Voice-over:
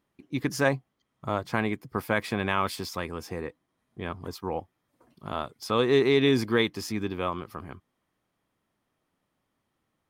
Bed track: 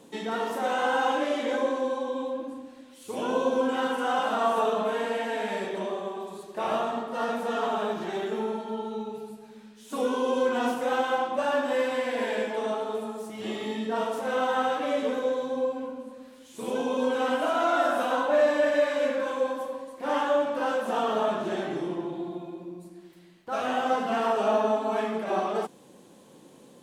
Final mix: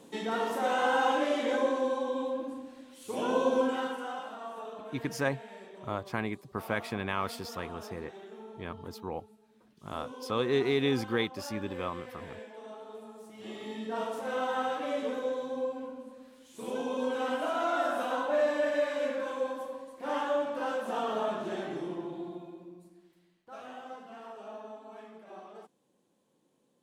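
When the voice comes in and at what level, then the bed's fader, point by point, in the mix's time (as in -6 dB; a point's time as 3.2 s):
4.60 s, -6.0 dB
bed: 3.61 s -1.5 dB
4.38 s -17 dB
12.62 s -17 dB
14 s -5.5 dB
22.28 s -5.5 dB
24.1 s -20.5 dB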